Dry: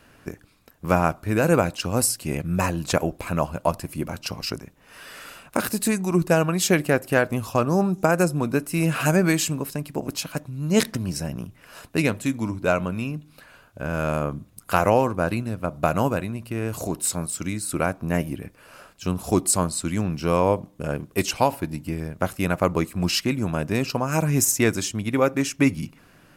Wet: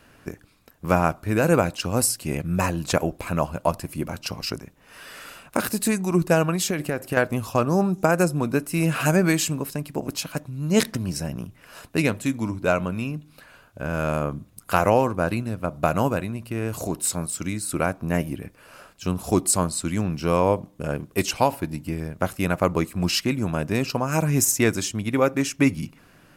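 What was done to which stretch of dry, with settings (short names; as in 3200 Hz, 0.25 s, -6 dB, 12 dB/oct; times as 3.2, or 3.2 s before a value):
6.55–7.17 compressor, threshold -20 dBFS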